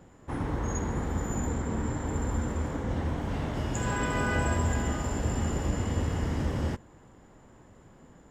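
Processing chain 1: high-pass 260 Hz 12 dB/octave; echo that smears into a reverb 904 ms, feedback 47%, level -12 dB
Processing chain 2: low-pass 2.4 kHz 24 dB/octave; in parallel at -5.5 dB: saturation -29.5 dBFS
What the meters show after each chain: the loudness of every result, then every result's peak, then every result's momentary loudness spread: -34.5 LUFS, -29.0 LUFS; -19.5 dBFS, -14.5 dBFS; 16 LU, 4 LU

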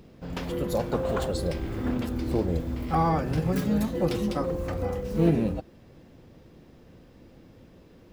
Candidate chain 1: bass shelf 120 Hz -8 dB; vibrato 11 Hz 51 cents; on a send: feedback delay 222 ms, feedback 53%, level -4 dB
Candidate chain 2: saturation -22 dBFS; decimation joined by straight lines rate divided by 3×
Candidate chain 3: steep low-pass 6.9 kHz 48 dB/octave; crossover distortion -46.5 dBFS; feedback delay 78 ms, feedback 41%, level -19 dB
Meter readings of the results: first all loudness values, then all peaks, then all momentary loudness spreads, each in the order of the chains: -27.5 LUFS, -30.5 LUFS, -28.5 LUFS; -11.5 dBFS, -22.0 dBFS, -9.5 dBFS; 13 LU, 5 LU, 7 LU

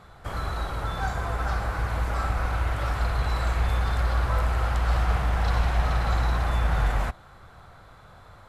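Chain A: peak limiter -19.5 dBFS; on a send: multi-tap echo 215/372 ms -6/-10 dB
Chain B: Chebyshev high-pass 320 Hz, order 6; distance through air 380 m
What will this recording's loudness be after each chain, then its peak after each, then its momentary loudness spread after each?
-28.5 LUFS, -35.0 LUFS; -15.0 dBFS, -21.5 dBFS; 5 LU, 21 LU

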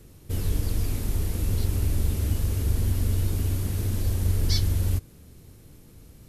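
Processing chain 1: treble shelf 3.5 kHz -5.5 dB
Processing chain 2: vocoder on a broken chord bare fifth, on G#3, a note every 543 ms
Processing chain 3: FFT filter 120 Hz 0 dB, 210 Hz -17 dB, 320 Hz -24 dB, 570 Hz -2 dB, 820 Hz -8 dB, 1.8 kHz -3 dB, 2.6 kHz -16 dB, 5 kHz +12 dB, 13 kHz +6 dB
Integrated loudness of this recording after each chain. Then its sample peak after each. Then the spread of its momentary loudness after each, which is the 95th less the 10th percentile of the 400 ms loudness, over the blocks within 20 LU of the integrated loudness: -27.5 LUFS, -34.5 LUFS, -26.0 LUFS; -12.0 dBFS, -20.5 dBFS, -6.5 dBFS; 4 LU, 20 LU, 7 LU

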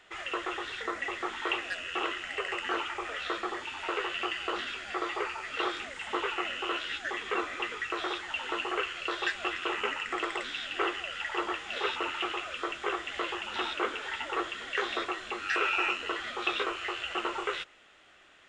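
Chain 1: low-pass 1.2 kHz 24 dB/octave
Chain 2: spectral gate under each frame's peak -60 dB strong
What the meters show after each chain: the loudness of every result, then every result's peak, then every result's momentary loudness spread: -38.5 LUFS, -32.5 LUFS; -18.5 dBFS, -14.5 dBFS; 5 LU, 4 LU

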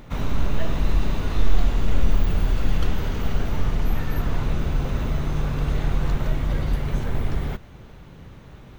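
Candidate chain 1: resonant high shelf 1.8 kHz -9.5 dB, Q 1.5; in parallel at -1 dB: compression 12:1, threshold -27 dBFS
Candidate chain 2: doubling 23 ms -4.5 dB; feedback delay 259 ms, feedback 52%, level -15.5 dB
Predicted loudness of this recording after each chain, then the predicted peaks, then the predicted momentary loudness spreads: -24.5 LUFS, -24.5 LUFS; -4.0 dBFS, -1.5 dBFS; 9 LU, 10 LU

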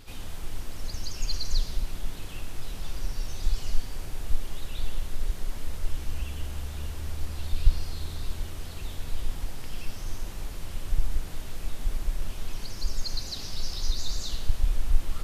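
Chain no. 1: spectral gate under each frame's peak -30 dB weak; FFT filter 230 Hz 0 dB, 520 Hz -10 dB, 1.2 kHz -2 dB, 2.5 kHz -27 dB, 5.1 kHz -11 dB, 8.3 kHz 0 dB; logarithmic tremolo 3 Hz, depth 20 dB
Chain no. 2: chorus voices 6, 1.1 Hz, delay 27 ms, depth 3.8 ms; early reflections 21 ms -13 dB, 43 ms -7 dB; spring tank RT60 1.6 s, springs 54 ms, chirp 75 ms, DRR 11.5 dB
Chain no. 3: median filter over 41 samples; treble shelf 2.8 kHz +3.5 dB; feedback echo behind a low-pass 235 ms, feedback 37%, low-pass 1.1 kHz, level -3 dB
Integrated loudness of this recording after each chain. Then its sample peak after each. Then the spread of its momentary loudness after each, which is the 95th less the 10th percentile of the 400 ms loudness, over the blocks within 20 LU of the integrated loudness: -54.5 LUFS, -36.5 LUFS, -35.0 LUFS; -35.0 dBFS, -9.0 dBFS, -5.0 dBFS; 5 LU, 9 LU, 10 LU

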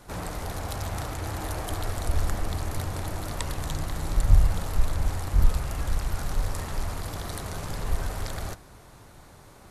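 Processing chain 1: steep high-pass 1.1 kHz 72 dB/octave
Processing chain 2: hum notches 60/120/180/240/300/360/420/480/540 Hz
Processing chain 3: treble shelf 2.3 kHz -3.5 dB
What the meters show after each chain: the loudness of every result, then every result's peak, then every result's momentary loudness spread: -39.5 LUFS, -31.0 LUFS, -31.0 LUFS; -13.5 dBFS, -5.5 dBFS, -5.0 dBFS; 6 LU, 9 LU, 9 LU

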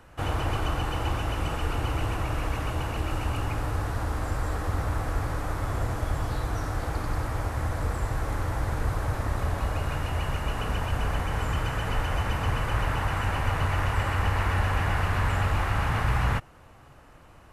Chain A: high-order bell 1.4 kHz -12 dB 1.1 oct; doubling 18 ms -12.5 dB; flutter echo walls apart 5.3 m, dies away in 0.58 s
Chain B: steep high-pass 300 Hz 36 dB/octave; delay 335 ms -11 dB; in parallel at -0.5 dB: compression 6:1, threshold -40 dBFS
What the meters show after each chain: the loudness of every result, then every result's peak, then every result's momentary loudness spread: -27.0 LUFS, -30.5 LUFS; -10.0 dBFS, -16.0 dBFS; 6 LU, 5 LU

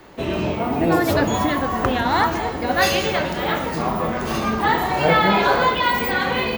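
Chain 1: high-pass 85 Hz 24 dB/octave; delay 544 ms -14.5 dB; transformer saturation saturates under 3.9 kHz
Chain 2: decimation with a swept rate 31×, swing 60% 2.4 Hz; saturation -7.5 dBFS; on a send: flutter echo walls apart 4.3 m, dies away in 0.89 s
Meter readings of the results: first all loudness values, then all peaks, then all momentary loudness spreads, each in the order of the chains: -24.0 LUFS, -16.0 LUFS; -5.0 dBFS, -1.5 dBFS; 6 LU, 6 LU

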